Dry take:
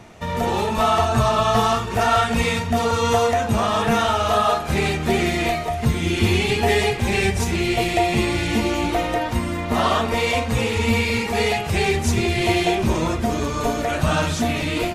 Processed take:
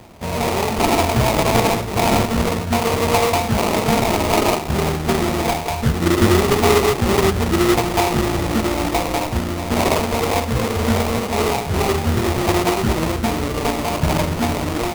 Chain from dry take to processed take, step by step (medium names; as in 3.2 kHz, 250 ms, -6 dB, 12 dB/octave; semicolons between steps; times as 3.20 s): 6.01–7.80 s: peaking EQ 320 Hz +6.5 dB 1.1 oct; sample-rate reducer 1.6 kHz, jitter 20%; trim +1.5 dB